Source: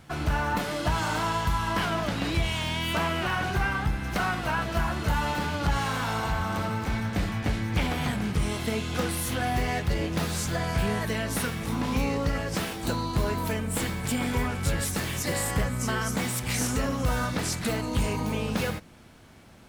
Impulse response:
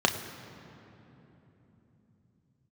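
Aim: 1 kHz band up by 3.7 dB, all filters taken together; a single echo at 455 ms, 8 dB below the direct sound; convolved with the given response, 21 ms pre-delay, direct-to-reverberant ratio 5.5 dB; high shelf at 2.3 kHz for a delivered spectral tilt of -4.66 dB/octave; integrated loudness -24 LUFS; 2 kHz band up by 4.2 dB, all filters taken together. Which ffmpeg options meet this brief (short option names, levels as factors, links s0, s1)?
-filter_complex "[0:a]equalizer=f=1000:t=o:g=4,equalizer=f=2000:t=o:g=8,highshelf=f=2300:g=-8,aecho=1:1:455:0.398,asplit=2[s0][s1];[1:a]atrim=start_sample=2205,adelay=21[s2];[s1][s2]afir=irnorm=-1:irlink=0,volume=0.112[s3];[s0][s3]amix=inputs=2:normalize=0,volume=1.12"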